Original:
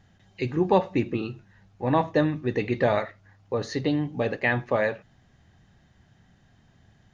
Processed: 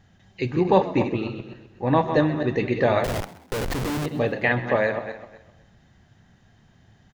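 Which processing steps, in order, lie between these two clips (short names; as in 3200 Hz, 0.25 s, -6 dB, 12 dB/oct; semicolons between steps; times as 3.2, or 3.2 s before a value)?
regenerating reverse delay 0.128 s, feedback 44%, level -8 dB; 3.04–4.06 Schmitt trigger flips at -31.5 dBFS; frequency-shifting echo 0.13 s, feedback 36%, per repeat +78 Hz, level -17.5 dB; gain +2 dB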